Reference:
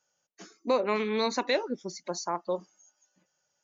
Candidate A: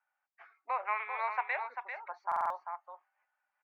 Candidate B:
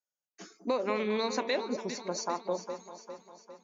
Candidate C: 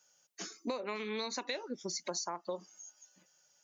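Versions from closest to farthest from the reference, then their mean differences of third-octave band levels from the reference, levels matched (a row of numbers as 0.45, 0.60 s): C, B, A; 4.0, 5.5, 11.5 dB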